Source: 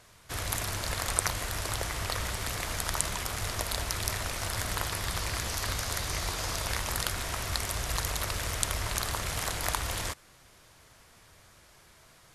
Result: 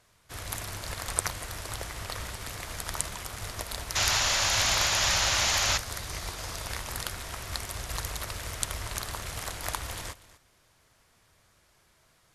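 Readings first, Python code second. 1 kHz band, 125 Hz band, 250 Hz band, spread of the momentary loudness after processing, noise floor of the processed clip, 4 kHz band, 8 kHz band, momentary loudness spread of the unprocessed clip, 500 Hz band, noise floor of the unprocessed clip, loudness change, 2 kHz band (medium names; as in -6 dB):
+1.0 dB, -3.0 dB, -3.0 dB, 14 LU, -65 dBFS, +4.5 dB, +2.5 dB, 3 LU, -1.0 dB, -58 dBFS, +2.5 dB, +2.5 dB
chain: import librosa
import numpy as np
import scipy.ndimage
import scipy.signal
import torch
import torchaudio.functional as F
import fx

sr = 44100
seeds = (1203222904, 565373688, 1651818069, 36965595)

p1 = x + fx.echo_single(x, sr, ms=242, db=-15.0, dry=0)
p2 = fx.spec_paint(p1, sr, seeds[0], shape='noise', start_s=3.95, length_s=1.83, low_hz=530.0, high_hz=7300.0, level_db=-26.0)
y = fx.upward_expand(p2, sr, threshold_db=-39.0, expansion=1.5)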